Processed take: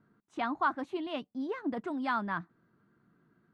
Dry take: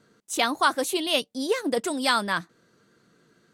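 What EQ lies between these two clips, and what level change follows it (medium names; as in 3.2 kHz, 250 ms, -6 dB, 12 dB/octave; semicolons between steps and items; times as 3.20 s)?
low-pass 1.2 kHz 12 dB/octave; peaking EQ 500 Hz -13.5 dB 0.65 oct; -3.0 dB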